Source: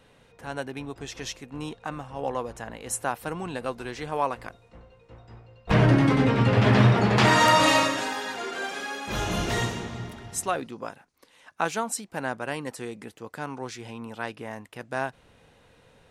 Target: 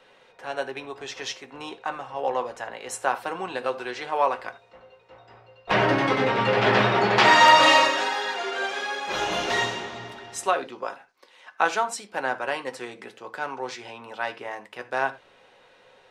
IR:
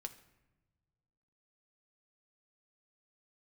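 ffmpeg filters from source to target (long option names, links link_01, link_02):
-filter_complex "[0:a]acrossover=split=350 6100:gain=0.112 1 0.2[link_01][link_02][link_03];[link_01][link_02][link_03]amix=inputs=3:normalize=0[link_04];[1:a]atrim=start_sample=2205,atrim=end_sample=4410[link_05];[link_04][link_05]afir=irnorm=-1:irlink=0,volume=8.5dB"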